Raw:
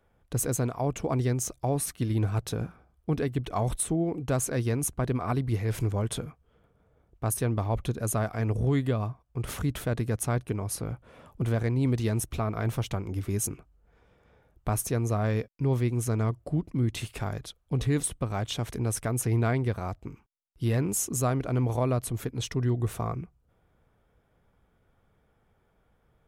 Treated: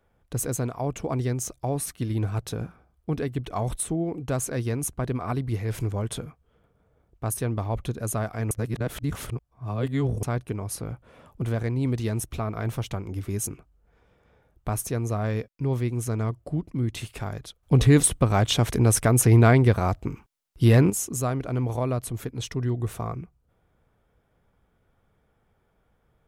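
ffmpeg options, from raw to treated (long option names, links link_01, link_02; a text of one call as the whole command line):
ffmpeg -i in.wav -filter_complex "[0:a]asplit=5[link_01][link_02][link_03][link_04][link_05];[link_01]atrim=end=8.512[link_06];[link_02]atrim=start=8.508:end=10.232,asetpts=PTS-STARTPTS,areverse[link_07];[link_03]atrim=start=10.228:end=17.632[link_08];[link_04]atrim=start=17.628:end=20.902,asetpts=PTS-STARTPTS,volume=9.5dB[link_09];[link_05]atrim=start=20.898[link_10];[link_06][link_07]acrossfade=duration=0.004:curve1=hsin:curve2=hsin[link_11];[link_11][link_08]acrossfade=duration=0.004:curve1=hsin:curve2=hsin[link_12];[link_12][link_09]acrossfade=duration=0.004:curve1=hsin:curve2=hsin[link_13];[link_13][link_10]acrossfade=duration=0.004:curve1=hsin:curve2=hsin" out.wav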